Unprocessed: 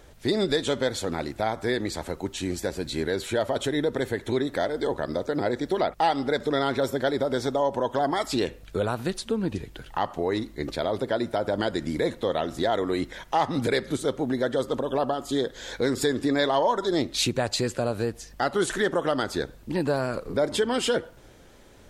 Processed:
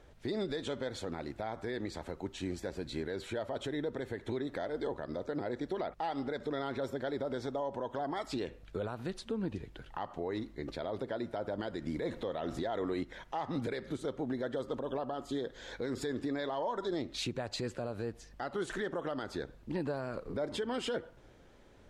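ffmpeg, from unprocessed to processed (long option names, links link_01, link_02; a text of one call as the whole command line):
ffmpeg -i in.wav -filter_complex "[0:a]asettb=1/sr,asplit=3[link_01][link_02][link_03];[link_01]atrim=end=12.024[link_04];[link_02]atrim=start=12.02:end=13.03,asetpts=PTS-STARTPTS,afade=type=in:duration=0.004:curve=qsin,afade=type=out:start_time=1.006:duration=0.004:curve=qsin,acontrast=55[link_05];[link_03]atrim=start=13.026[link_06];[link_04][link_05]acrossfade=duration=0.004:curve1=hsin:curve2=qsin[link_07];[link_07][link_06]acrossfade=duration=0.004:curve1=qsin:curve2=hsin,aemphasis=mode=reproduction:type=50kf,alimiter=limit=-19.5dB:level=0:latency=1:release=96,volume=-7dB" out.wav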